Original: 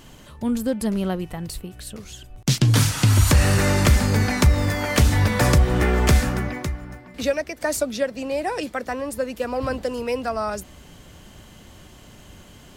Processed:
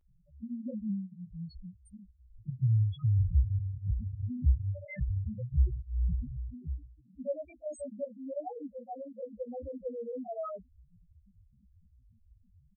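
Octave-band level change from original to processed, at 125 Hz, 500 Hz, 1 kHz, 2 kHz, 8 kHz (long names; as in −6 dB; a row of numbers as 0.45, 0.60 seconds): −11.0 dB, −15.0 dB, −20.5 dB, −30.0 dB, below −35 dB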